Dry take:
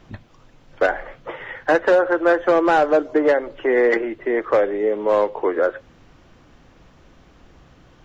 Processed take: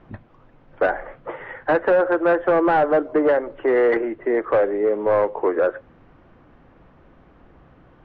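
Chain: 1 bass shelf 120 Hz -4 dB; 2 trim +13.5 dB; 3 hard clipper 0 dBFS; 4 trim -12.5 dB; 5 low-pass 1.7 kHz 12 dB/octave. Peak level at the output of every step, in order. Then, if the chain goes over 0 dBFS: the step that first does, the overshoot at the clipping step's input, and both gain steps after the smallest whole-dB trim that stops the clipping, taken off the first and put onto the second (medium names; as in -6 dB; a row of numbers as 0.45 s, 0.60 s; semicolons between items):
-8.0 dBFS, +5.5 dBFS, 0.0 dBFS, -12.5 dBFS, -12.0 dBFS; step 2, 5.5 dB; step 2 +7.5 dB, step 4 -6.5 dB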